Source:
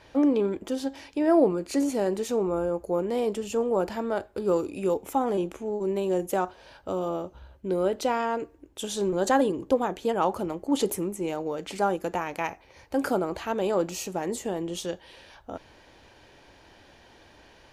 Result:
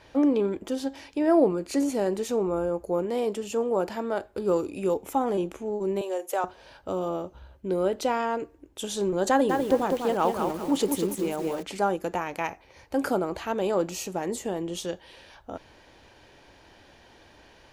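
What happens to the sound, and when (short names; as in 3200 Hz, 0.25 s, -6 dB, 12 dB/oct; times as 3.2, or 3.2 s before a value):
3.05–4.24 low shelf 85 Hz -11.5 dB
6.01–6.44 HPF 450 Hz 24 dB/oct
9.29–11.63 lo-fi delay 0.198 s, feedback 35%, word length 7-bit, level -4.5 dB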